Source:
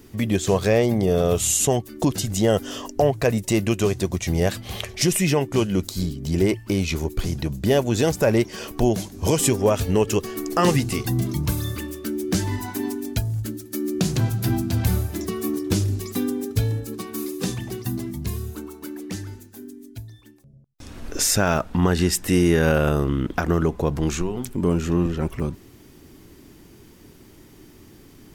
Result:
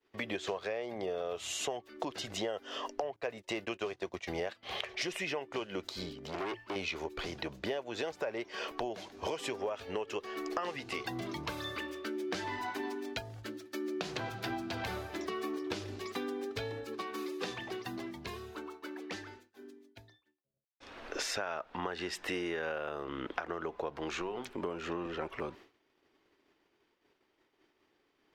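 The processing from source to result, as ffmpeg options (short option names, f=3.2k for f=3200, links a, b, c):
-filter_complex "[0:a]asettb=1/sr,asplit=3[a][b][c];[a]atrim=end=3.164[d];[b]atrim=start=3.16:end=4.63,asetpts=PTS-STARTPTS,afade=t=in:d=0.004:c=qsin,afade=t=out:st=1.466:d=0.004:c=qsin,agate=range=-14dB:threshold=-28dB:ratio=16:release=100:detection=peak[e];[c]atrim=start=4.626[f];[d][e]acrossfade=d=0.004:c1=hsin:c2=qsin[g];[g][f]acrossfade=d=0.004:c1=qsin:c2=hsin,asettb=1/sr,asplit=3[h][i][j];[h]atrim=end=6.154[k];[i]atrim=start=6.15:end=6.76,asetpts=PTS-STARTPTS,afade=t=in:d=0.004:c=qsin,afade=t=out:st=0.606:d=0.004:c=qsin,asoftclip=type=hard:threshold=-25.5dB[l];[j]atrim=start=6.756[m];[k][l]acrossfade=d=0.004:c1=hsin:c2=qsin[n];[n][m]acrossfade=d=0.004:c1=qsin:c2=hsin,agate=range=-33dB:threshold=-36dB:ratio=3:detection=peak,acrossover=split=410 4300:gain=0.0708 1 0.0631[o][p][q];[o][p][q]amix=inputs=3:normalize=0,acompressor=threshold=-33dB:ratio=10"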